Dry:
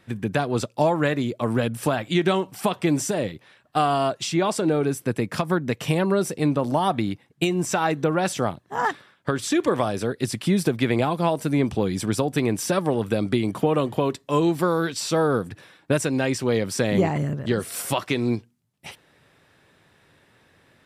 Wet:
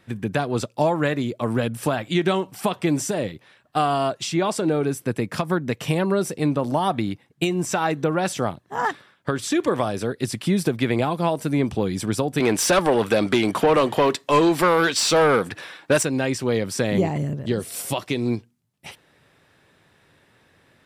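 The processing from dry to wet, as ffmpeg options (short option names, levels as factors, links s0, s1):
-filter_complex "[0:a]asettb=1/sr,asplit=3[s0][s1][s2];[s0]atrim=end=12.404[s3];[s1]atrim=start=12.4:end=16.03,asetpts=PTS-STARTPTS,afade=t=in:d=0.004:c=qsin,afade=t=out:st=3.626:d=0.004:c=qsin,asplit=2[s4][s5];[s5]highpass=f=720:p=1,volume=7.94,asoftclip=type=tanh:threshold=0.398[s6];[s4][s6]amix=inputs=2:normalize=0,lowpass=f=6100:p=1,volume=0.501[s7];[s2]atrim=start=16.026[s8];[s3][s7]acrossfade=d=0.004:c1=hsin:c2=qsin[s9];[s9][s8]acrossfade=d=0.004:c1=qsin:c2=hsin,asettb=1/sr,asplit=3[s10][s11][s12];[s10]atrim=end=16.984[s13];[s11]atrim=start=16.98:end=18.26,asetpts=PTS-STARTPTS,afade=t=in:d=0.004:c=qsin,afade=t=out:st=1.276:d=0.004:c=qsin,equalizer=f=1400:t=o:w=1.1:g=-7[s14];[s12]atrim=start=18.256[s15];[s13][s14]acrossfade=d=0.004:c1=hsin:c2=qsin[s16];[s16][s15]acrossfade=d=0.004:c1=qsin:c2=hsin"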